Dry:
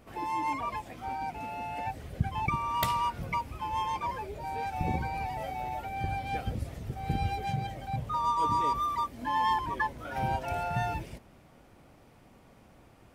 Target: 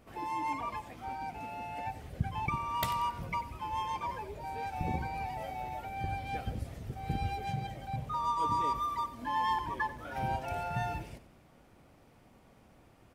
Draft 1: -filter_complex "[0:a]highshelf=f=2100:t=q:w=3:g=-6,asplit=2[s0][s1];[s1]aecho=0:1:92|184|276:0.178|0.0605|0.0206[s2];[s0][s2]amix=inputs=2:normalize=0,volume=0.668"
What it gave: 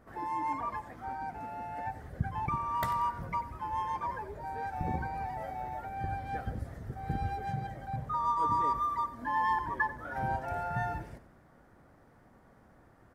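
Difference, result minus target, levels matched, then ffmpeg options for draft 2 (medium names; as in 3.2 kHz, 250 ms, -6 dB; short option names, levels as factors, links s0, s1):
4 kHz band -10.5 dB
-filter_complex "[0:a]asplit=2[s0][s1];[s1]aecho=0:1:92|184|276:0.178|0.0605|0.0206[s2];[s0][s2]amix=inputs=2:normalize=0,volume=0.668"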